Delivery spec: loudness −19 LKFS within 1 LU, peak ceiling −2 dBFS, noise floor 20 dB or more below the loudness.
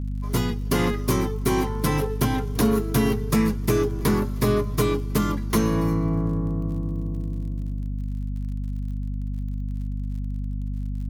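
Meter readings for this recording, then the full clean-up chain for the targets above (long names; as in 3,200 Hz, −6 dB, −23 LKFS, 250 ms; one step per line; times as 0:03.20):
crackle rate 42 per second; mains hum 50 Hz; hum harmonics up to 250 Hz; level of the hum −25 dBFS; integrated loudness −25.5 LKFS; sample peak −9.5 dBFS; target loudness −19.0 LKFS
→ click removal
mains-hum notches 50/100/150/200/250 Hz
level +6.5 dB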